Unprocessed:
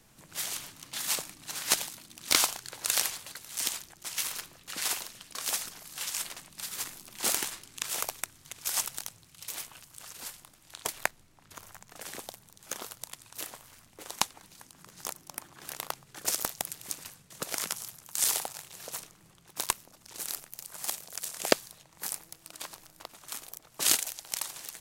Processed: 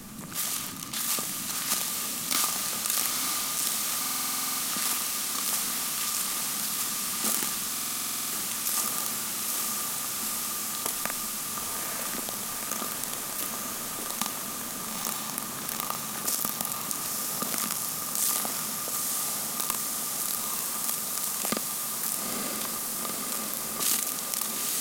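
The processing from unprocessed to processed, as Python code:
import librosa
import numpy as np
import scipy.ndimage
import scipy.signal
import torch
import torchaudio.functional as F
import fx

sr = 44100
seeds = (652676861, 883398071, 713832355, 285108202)

y = fx.doubler(x, sr, ms=46.0, db=-13.0)
y = fx.small_body(y, sr, hz=(220.0, 1200.0), ring_ms=45, db=13)
y = np.clip(y, -10.0 ** (-17.0 / 20.0), 10.0 ** (-17.0 / 20.0))
y = fx.high_shelf(y, sr, hz=8000.0, db=7.0)
y = fx.echo_diffused(y, sr, ms=905, feedback_pct=77, wet_db=-5)
y = fx.buffer_glitch(y, sr, at_s=(4.0, 7.72), block=2048, repeats=12)
y = fx.env_flatten(y, sr, amount_pct=50)
y = y * librosa.db_to_amplitude(-5.0)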